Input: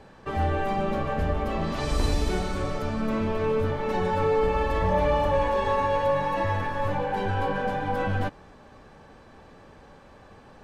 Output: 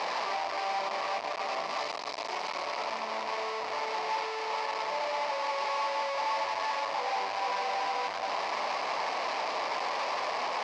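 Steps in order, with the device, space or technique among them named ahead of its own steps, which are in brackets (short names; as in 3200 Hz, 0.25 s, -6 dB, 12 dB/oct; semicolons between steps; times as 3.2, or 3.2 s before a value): home computer beeper (infinite clipping; speaker cabinet 630–5200 Hz, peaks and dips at 680 Hz +8 dB, 1000 Hz +9 dB, 1500 Hz -7 dB, 2200 Hz +4 dB, 3400 Hz -4 dB, 4900 Hz +5 dB); gain -6 dB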